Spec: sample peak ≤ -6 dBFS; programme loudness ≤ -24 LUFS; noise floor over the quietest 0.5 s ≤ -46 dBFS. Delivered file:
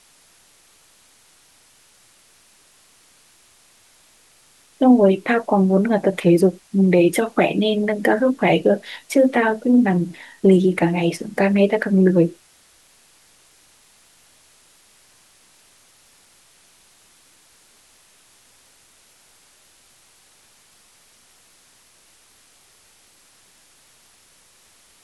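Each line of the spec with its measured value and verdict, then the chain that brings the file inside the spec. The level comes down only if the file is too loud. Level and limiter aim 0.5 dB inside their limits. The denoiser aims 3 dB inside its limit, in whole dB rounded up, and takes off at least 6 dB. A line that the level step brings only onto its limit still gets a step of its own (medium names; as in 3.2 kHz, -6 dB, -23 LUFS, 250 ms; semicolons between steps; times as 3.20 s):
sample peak -5.0 dBFS: fail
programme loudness -17.5 LUFS: fail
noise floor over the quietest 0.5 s -54 dBFS: pass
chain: trim -7 dB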